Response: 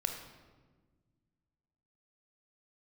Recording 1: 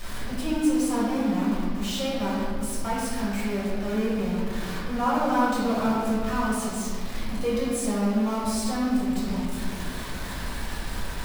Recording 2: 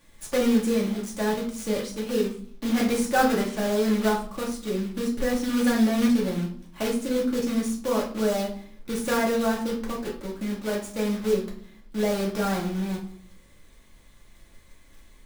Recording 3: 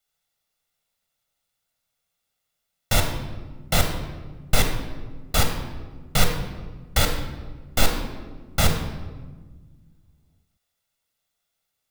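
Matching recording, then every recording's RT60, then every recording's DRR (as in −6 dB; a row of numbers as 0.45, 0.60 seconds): 3; 1.9, 0.60, 1.4 seconds; −8.0, −3.5, 4.0 decibels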